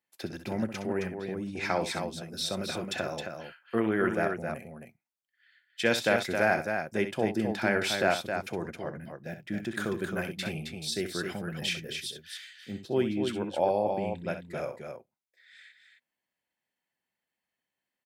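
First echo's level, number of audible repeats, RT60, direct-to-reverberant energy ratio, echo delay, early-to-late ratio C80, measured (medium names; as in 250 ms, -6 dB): -10.5 dB, 2, no reverb, no reverb, 64 ms, no reverb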